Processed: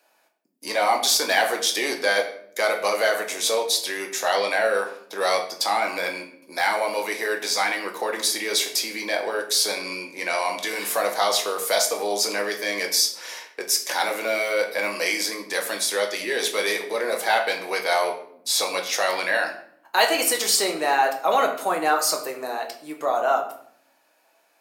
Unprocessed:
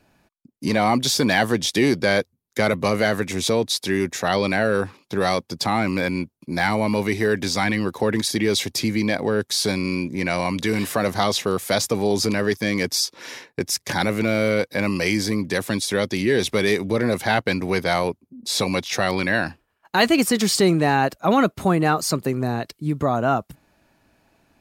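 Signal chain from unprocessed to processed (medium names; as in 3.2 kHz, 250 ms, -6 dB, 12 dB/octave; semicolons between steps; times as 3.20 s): ladder high-pass 410 Hz, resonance 20%; treble shelf 6.8 kHz +9.5 dB; simulated room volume 110 m³, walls mixed, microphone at 0.62 m; trim +2 dB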